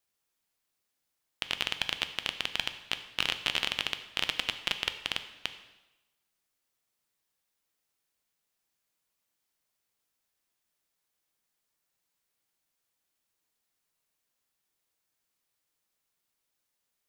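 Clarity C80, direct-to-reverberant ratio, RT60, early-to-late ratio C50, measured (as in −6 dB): 13.0 dB, 8.5 dB, 1.0 s, 11.5 dB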